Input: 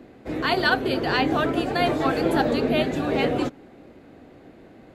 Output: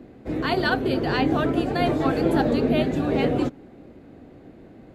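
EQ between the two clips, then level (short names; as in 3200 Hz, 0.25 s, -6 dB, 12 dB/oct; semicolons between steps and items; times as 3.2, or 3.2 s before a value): low shelf 460 Hz +8.5 dB; -4.0 dB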